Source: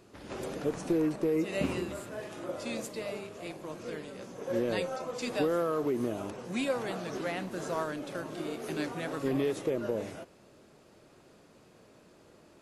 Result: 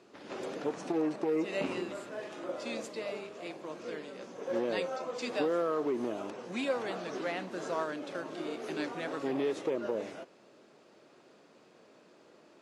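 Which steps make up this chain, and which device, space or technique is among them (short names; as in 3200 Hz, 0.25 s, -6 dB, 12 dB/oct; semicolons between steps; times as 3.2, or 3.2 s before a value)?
public-address speaker with an overloaded transformer (core saturation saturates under 360 Hz; BPF 240–6200 Hz)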